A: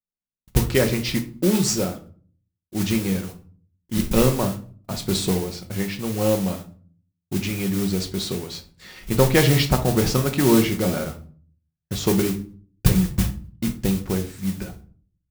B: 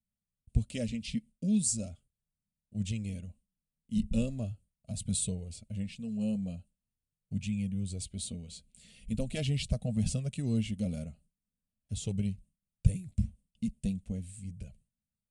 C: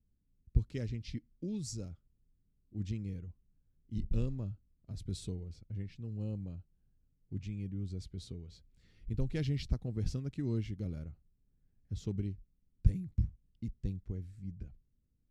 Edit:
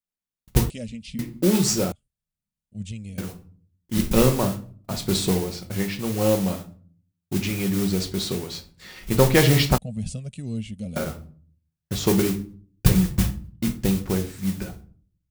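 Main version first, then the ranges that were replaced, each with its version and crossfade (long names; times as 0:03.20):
A
0:00.70–0:01.19: punch in from B
0:01.92–0:03.18: punch in from B
0:09.78–0:10.96: punch in from B
not used: C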